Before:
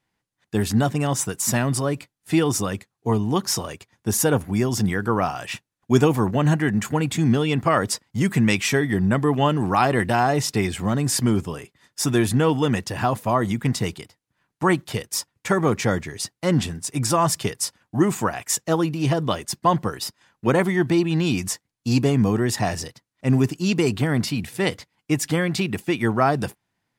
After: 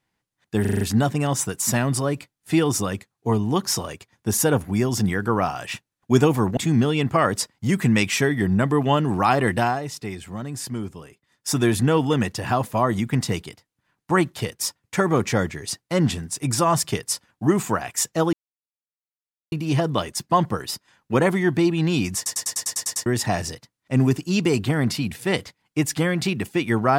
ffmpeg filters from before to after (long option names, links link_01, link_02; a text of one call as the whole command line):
ffmpeg -i in.wav -filter_complex "[0:a]asplit=19[link_01][link_02][link_03][link_04][link_05][link_06][link_07][link_08][link_09][link_10][link_11][link_12][link_13][link_14][link_15][link_16][link_17][link_18][link_19];[link_01]atrim=end=0.652[link_20];[link_02]atrim=start=0.608:end=0.652[link_21];[link_03]atrim=start=0.608:end=0.652[link_22];[link_04]atrim=start=0.608:end=0.652[link_23];[link_05]atrim=start=0.608:end=0.652[link_24];[link_06]atrim=start=0.608:end=6.372[link_25];[link_07]atrim=start=7.088:end=10.32,asetpts=PTS-STARTPTS,afade=type=out:start_time=3.052:duration=0.18:silence=0.334965[link_26];[link_08]atrim=start=10.32:end=11.85,asetpts=PTS-STARTPTS,volume=-9.5dB[link_27];[link_09]atrim=start=11.85:end=18.85,asetpts=PTS-STARTPTS,afade=type=in:duration=0.18:silence=0.334965,afade=type=out:start_time=6.996:duration=0.004:curve=hsin,apad=pad_dur=1.19[link_28];[link_10]atrim=start=18.85:end=21.592,asetpts=PTS-STARTPTS,afade=type=in:duration=0.004:curve=hsin[link_29];[link_11]atrim=start=21.488:end=21.592[link_30];[link_12]atrim=start=21.488:end=21.592[link_31];[link_13]atrim=start=21.488:end=21.592[link_32];[link_14]atrim=start=21.488:end=21.592[link_33];[link_15]atrim=start=21.488:end=21.592[link_34];[link_16]atrim=start=21.488:end=21.592[link_35];[link_17]atrim=start=21.488:end=21.592[link_36];[link_18]atrim=start=21.488:end=21.592[link_37];[link_19]atrim=start=22.388[link_38];[link_20][link_21]acrossfade=duration=0.004:curve1=hsin:curve2=hsin[link_39];[link_39][link_22]acrossfade=duration=0.004:curve1=hsin:curve2=hsin[link_40];[link_40][link_23]acrossfade=duration=0.004:curve1=hsin:curve2=hsin[link_41];[link_41][link_24]acrossfade=duration=0.004:curve1=hsin:curve2=hsin[link_42];[link_42][link_25]acrossfade=duration=0.004:curve1=hsin:curve2=hsin[link_43];[link_26][link_27][link_28][link_29]concat=n=4:v=0:a=1[link_44];[link_43][link_44]acrossfade=duration=0.004:curve1=hsin:curve2=hsin[link_45];[link_45][link_30]acrossfade=duration=0.004:curve1=hsin:curve2=hsin[link_46];[link_46][link_31]acrossfade=duration=0.004:curve1=hsin:curve2=hsin[link_47];[link_47][link_32]acrossfade=duration=0.004:curve1=hsin:curve2=hsin[link_48];[link_48][link_33]acrossfade=duration=0.004:curve1=hsin:curve2=hsin[link_49];[link_49][link_34]acrossfade=duration=0.004:curve1=hsin:curve2=hsin[link_50];[link_50][link_35]acrossfade=duration=0.004:curve1=hsin:curve2=hsin[link_51];[link_51][link_36]acrossfade=duration=0.004:curve1=hsin:curve2=hsin[link_52];[link_52][link_37]acrossfade=duration=0.004:curve1=hsin:curve2=hsin[link_53];[link_53][link_38]acrossfade=duration=0.004:curve1=hsin:curve2=hsin" out.wav